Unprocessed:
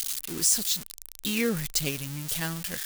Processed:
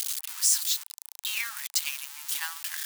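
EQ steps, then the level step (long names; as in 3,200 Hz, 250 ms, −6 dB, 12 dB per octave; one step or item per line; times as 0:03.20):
Butterworth high-pass 840 Hz 72 dB per octave
0.0 dB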